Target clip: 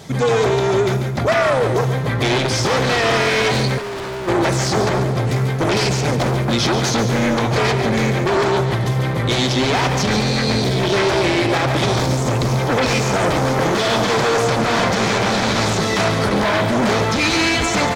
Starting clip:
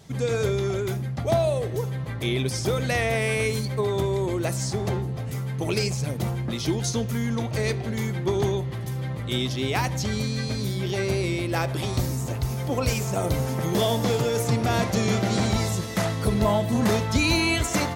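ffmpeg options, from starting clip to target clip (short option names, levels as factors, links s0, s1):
-filter_complex "[0:a]dynaudnorm=f=160:g=21:m=1.58,asplit=2[s0][s1];[s1]aeval=exprs='0.501*sin(PI/2*7.08*val(0)/0.501)':c=same,volume=0.355[s2];[s0][s2]amix=inputs=2:normalize=0,lowshelf=f=130:g=-10.5,bandreject=f=2800:w=18,aecho=1:1:141|282|423|564|705:0.316|0.136|0.0585|0.0251|0.0108,asplit=3[s3][s4][s5];[s3]afade=t=out:st=3.77:d=0.02[s6];[s4]volume=21.1,asoftclip=hard,volume=0.0473,afade=t=in:st=3.77:d=0.02,afade=t=out:st=4.27:d=0.02[s7];[s5]afade=t=in:st=4.27:d=0.02[s8];[s6][s7][s8]amix=inputs=3:normalize=0,acrossover=split=7300[s9][s10];[s10]acompressor=threshold=0.00891:ratio=4:attack=1:release=60[s11];[s9][s11]amix=inputs=2:normalize=0,highshelf=f=7100:g=-6,alimiter=level_in=2.82:limit=0.891:release=50:level=0:latency=1,volume=0.398"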